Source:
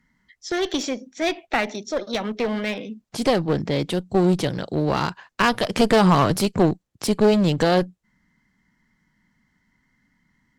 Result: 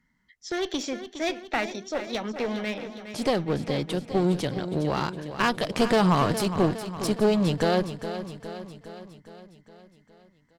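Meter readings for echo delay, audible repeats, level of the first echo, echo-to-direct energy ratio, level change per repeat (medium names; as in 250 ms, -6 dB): 412 ms, 6, -11.0 dB, -9.0 dB, -4.5 dB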